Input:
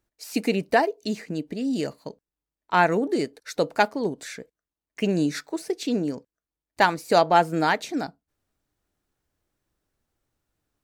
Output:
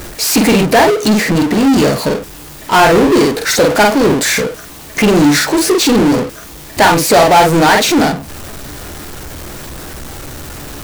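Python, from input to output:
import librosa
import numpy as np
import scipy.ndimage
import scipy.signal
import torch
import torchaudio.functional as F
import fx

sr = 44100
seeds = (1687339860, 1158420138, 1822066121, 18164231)

y = fx.room_early_taps(x, sr, ms=(14, 48), db=(-8.5, -5.5))
y = fx.power_curve(y, sr, exponent=0.35)
y = y * librosa.db_to_amplitude(2.5)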